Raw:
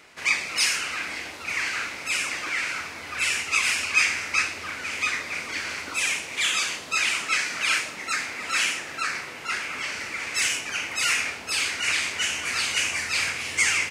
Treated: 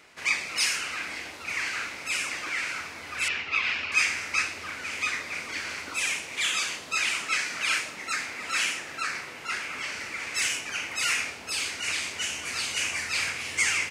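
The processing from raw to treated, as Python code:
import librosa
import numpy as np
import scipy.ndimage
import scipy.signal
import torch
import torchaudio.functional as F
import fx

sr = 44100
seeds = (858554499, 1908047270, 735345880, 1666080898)

y = fx.lowpass(x, sr, hz=4100.0, slope=24, at=(3.28, 3.92))
y = fx.dynamic_eq(y, sr, hz=1700.0, q=0.93, threshold_db=-36.0, ratio=4.0, max_db=-4, at=(11.24, 12.81))
y = y * 10.0 ** (-3.0 / 20.0)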